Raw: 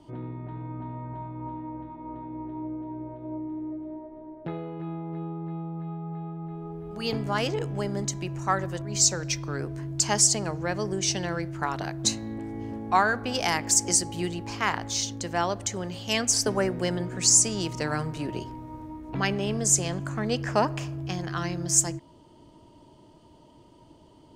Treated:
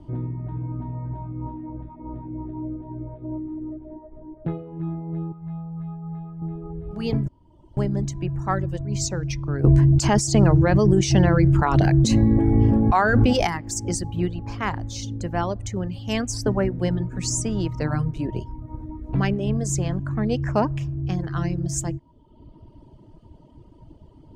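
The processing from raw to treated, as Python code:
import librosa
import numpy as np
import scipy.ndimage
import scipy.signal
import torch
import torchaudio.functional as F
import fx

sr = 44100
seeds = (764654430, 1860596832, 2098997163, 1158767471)

y = fx.peak_eq(x, sr, hz=310.0, db=-13.0, octaves=0.97, at=(5.32, 6.42))
y = fx.env_flatten(y, sr, amount_pct=70, at=(9.64, 13.47))
y = fx.edit(y, sr, fx.room_tone_fill(start_s=7.28, length_s=0.49), tone=tone)
y = fx.high_shelf(y, sr, hz=11000.0, db=11.5)
y = fx.dereverb_blind(y, sr, rt60_s=0.95)
y = fx.riaa(y, sr, side='playback')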